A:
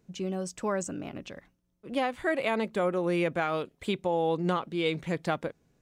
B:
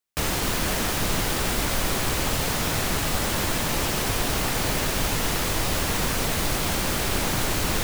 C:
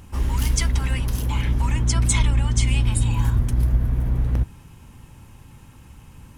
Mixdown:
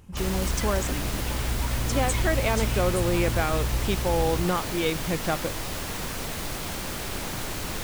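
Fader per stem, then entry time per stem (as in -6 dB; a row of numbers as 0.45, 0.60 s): +2.0, -7.5, -8.5 dB; 0.00, 0.00, 0.00 s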